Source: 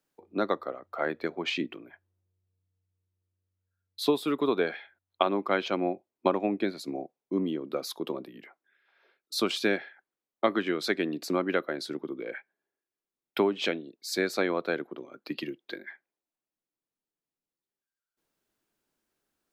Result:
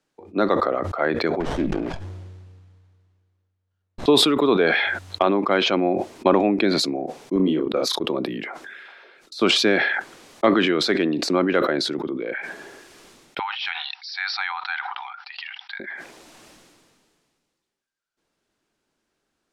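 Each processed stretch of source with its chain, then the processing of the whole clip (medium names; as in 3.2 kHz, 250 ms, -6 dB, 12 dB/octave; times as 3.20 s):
1.40–4.06 s: hum notches 50/100/150/200 Hz + sliding maximum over 17 samples
7.36–8.02 s: gate -36 dBFS, range -19 dB + doubling 32 ms -6 dB
13.39–15.80 s: brick-wall FIR band-pass 740–5800 Hz + distance through air 57 m + band-stop 1.1 kHz, Q 6.9
whole clip: de-esser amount 100%; low-pass 7.4 kHz 12 dB/octave; decay stretcher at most 28 dB/s; trim +7 dB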